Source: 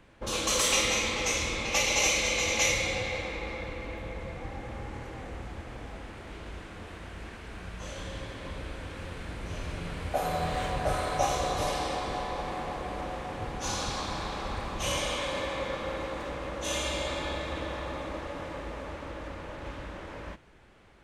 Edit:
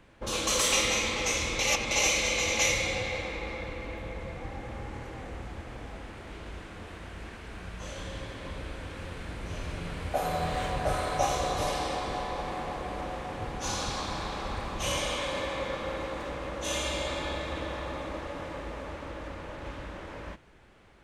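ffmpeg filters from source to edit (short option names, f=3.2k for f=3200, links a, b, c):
-filter_complex "[0:a]asplit=3[a][b][c];[a]atrim=end=1.592[d];[b]atrim=start=1.588:end=1.912,asetpts=PTS-STARTPTS,areverse[e];[c]atrim=start=1.908[f];[d][e]acrossfade=d=0.004:c1=hsin:c2=hsin[g];[g][f]acrossfade=d=0.004:c1=hsin:c2=hsin"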